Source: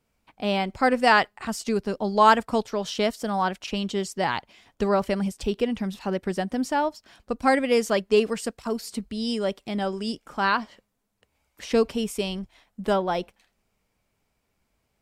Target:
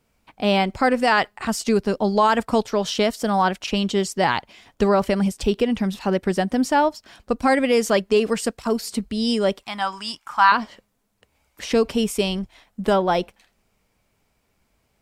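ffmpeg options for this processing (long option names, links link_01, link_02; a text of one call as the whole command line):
ffmpeg -i in.wav -filter_complex "[0:a]alimiter=limit=-14.5dB:level=0:latency=1:release=80,asettb=1/sr,asplit=3[link_01][link_02][link_03];[link_01]atrim=end=9.634[link_04];[link_02]atrim=start=9.63:end=10.52,asetpts=PTS-STARTPTS,afade=type=in:duration=0.004:curve=qsin,afade=type=out:start_time=0.886:duration=0.004:curve=qsin,lowshelf=frequency=670:width_type=q:width=3:gain=-13[link_05];[link_03]atrim=start=10.516[link_06];[link_04][link_05]acrossfade=duration=0.004:curve1=hsin:curve2=qsin[link_07];[link_07][link_06]acrossfade=duration=0.004:curve1=qsin:curve2=hsin,volume=6dB" out.wav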